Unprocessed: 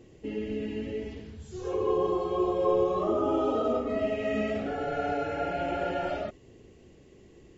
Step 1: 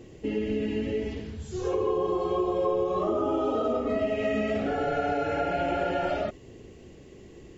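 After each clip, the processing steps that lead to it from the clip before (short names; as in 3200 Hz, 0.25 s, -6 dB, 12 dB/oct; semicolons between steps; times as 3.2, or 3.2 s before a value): compressor 4:1, threshold -30 dBFS, peak gain reduction 8.5 dB; gain +6 dB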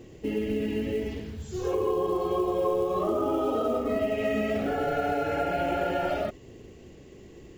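short-mantissa float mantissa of 4-bit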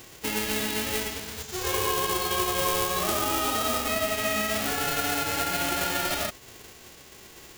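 spectral whitening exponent 0.3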